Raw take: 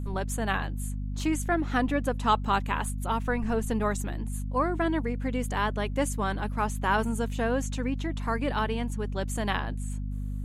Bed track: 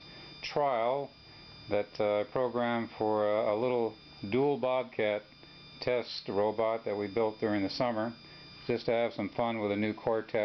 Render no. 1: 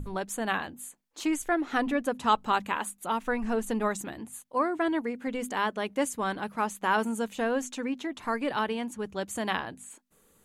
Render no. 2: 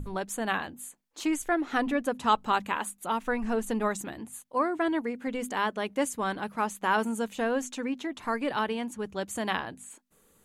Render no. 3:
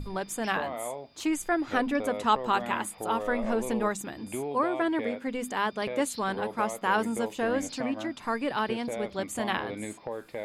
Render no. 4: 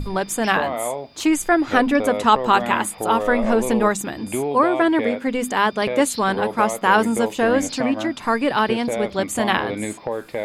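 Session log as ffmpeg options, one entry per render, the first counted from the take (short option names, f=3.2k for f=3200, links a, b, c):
-af "bandreject=f=50:t=h:w=6,bandreject=f=100:t=h:w=6,bandreject=f=150:t=h:w=6,bandreject=f=200:t=h:w=6,bandreject=f=250:t=h:w=6"
-af anull
-filter_complex "[1:a]volume=-6dB[a];[0:a][a]amix=inputs=2:normalize=0"
-af "volume=10dB,alimiter=limit=-3dB:level=0:latency=1"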